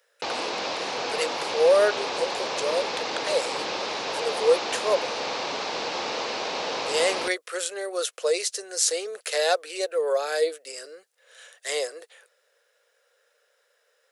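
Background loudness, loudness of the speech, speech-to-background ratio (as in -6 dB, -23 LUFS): -29.0 LUFS, -26.5 LUFS, 2.5 dB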